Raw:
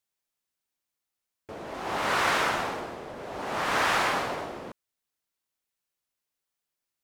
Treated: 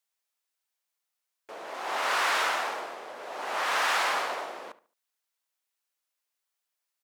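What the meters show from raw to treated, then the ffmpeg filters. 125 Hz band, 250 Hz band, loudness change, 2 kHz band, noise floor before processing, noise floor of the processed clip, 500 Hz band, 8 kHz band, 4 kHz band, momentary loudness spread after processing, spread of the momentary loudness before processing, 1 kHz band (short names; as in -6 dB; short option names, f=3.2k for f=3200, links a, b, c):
under -20 dB, -11.5 dB, -0.5 dB, -0.5 dB, under -85 dBFS, -85 dBFS, -3.5 dB, +0.5 dB, +0.5 dB, 18 LU, 17 LU, -1.0 dB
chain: -filter_complex "[0:a]aeval=exprs='(tanh(15.8*val(0)+0.5)-tanh(0.5))/15.8':c=same,highpass=580,asplit=2[a][b];[b]adelay=72,lowpass=f=2.6k:p=1,volume=-16.5dB,asplit=2[c][d];[d]adelay=72,lowpass=f=2.6k:p=1,volume=0.31,asplit=2[e][f];[f]adelay=72,lowpass=f=2.6k:p=1,volume=0.31[g];[a][c][e][g]amix=inputs=4:normalize=0,volume=3.5dB"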